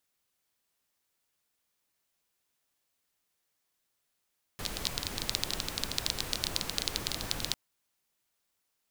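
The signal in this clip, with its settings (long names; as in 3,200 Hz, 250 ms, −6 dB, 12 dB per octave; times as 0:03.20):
rain-like ticks over hiss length 2.95 s, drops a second 15, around 4,100 Hz, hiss −2 dB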